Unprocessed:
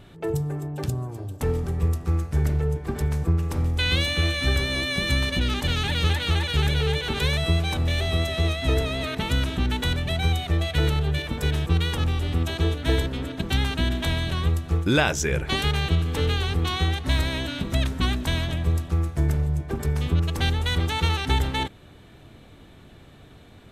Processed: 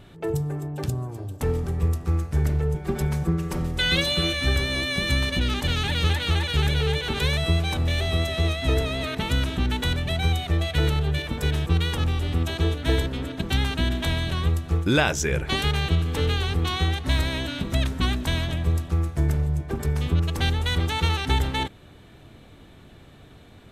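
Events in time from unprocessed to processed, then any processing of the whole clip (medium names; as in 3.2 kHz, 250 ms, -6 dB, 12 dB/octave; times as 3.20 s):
2.74–4.33 s: comb 5.4 ms, depth 83%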